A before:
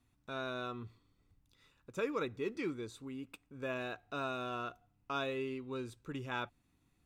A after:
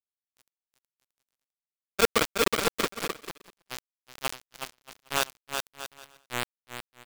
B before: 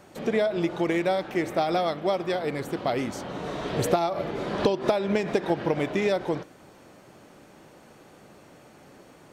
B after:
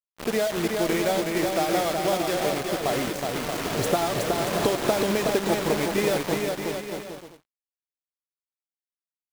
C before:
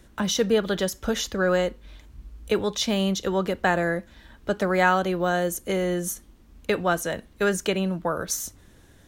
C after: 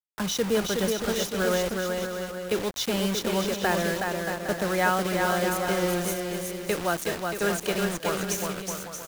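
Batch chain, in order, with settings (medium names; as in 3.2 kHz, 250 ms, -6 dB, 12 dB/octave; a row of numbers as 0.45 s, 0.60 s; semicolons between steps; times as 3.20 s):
bit crusher 5-bit; bouncing-ball echo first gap 370 ms, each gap 0.7×, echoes 5; expander -39 dBFS; peak normalisation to -9 dBFS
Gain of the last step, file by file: +11.5 dB, -1.0 dB, -4.0 dB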